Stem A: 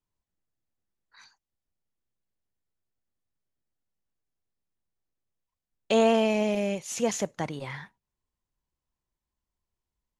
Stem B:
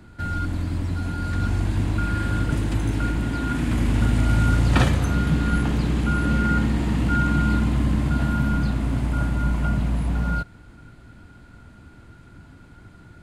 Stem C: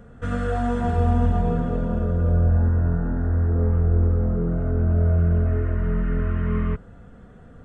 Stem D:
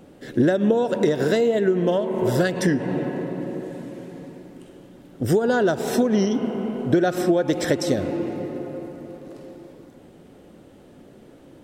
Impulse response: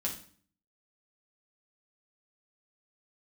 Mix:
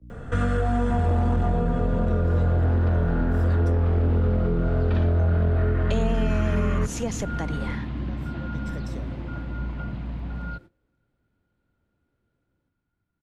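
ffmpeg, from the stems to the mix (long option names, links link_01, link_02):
-filter_complex "[0:a]aeval=exprs='val(0)+0.00794*(sin(2*PI*60*n/s)+sin(2*PI*2*60*n/s)/2+sin(2*PI*3*60*n/s)/3+sin(2*PI*4*60*n/s)/4+sin(2*PI*5*60*n/s)/5)':channel_layout=same,volume=0.5dB,asplit=2[link_01][link_02];[1:a]lowpass=frequency=4500:width=0.5412,lowpass=frequency=4500:width=1.3066,dynaudnorm=framelen=260:gausssize=9:maxgain=5dB,adelay=150,volume=-14dB[link_03];[2:a]equalizer=frequency=190:width_type=o:width=1.3:gain=-5.5,aeval=exprs='0.335*sin(PI/2*1.78*val(0)/0.335)':channel_layout=same,adelay=100,volume=1dB[link_04];[3:a]adelay=1050,volume=-14dB[link_05];[link_02]apad=whole_len=559287[link_06];[link_05][link_06]sidechaincompress=threshold=-43dB:ratio=8:attack=16:release=1350[link_07];[link_01][link_03][link_04][link_07]amix=inputs=4:normalize=0,agate=range=-19dB:threshold=-44dB:ratio=16:detection=peak,acrossover=split=120|260[link_08][link_09][link_10];[link_08]acompressor=threshold=-24dB:ratio=4[link_11];[link_09]acompressor=threshold=-27dB:ratio=4[link_12];[link_10]acompressor=threshold=-29dB:ratio=4[link_13];[link_11][link_12][link_13]amix=inputs=3:normalize=0"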